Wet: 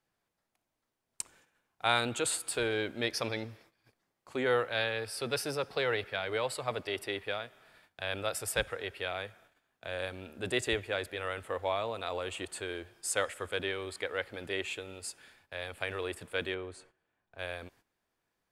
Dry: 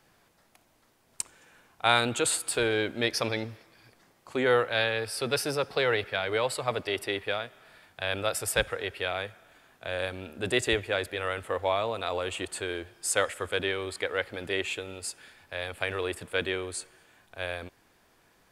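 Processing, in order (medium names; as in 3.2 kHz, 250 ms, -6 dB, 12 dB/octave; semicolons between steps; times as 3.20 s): 16.54–17.39 s: low-pass 1.6 kHz 6 dB/octave; gate -55 dBFS, range -14 dB; trim -5 dB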